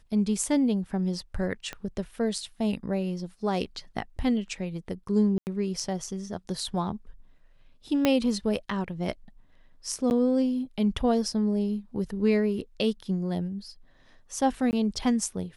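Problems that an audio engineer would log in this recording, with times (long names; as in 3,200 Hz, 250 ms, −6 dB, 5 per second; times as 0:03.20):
0:01.73: click −20 dBFS
0:05.38–0:05.47: drop-out 89 ms
0:08.05: click −8 dBFS
0:10.10–0:10.11: drop-out 9.8 ms
0:14.71–0:14.73: drop-out 19 ms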